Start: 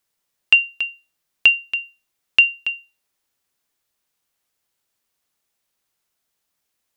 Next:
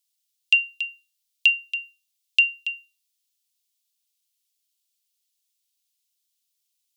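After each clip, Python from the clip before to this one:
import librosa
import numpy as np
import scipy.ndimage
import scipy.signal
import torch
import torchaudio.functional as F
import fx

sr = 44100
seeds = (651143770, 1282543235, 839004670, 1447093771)

y = scipy.signal.sosfilt(scipy.signal.cheby2(4, 80, 510.0, 'highpass', fs=sr, output='sos'), x)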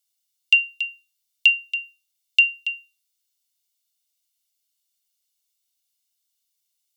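y = x + 0.65 * np.pad(x, (int(1.4 * sr / 1000.0), 0))[:len(x)]
y = y * 10.0 ** (-1.0 / 20.0)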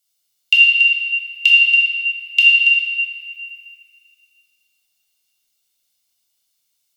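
y = fx.room_shoebox(x, sr, seeds[0], volume_m3=180.0, walls='hard', distance_m=0.92)
y = y * 10.0 ** (3.0 / 20.0)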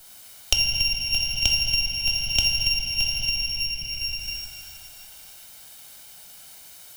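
y = fx.lower_of_two(x, sr, delay_ms=1.3)
y = y + 10.0 ** (-11.5 / 20.0) * np.pad(y, (int(620 * sr / 1000.0), 0))[:len(y)]
y = fx.band_squash(y, sr, depth_pct=100)
y = y * 10.0 ** (-4.5 / 20.0)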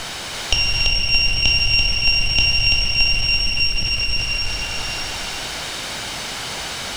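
y = x + 0.5 * 10.0 ** (-19.0 / 20.0) * np.sign(x)
y = fx.air_absorb(y, sr, metres=110.0)
y = y + 10.0 ** (-4.0 / 20.0) * np.pad(y, (int(336 * sr / 1000.0), 0))[:len(y)]
y = y * 10.0 ** (3.5 / 20.0)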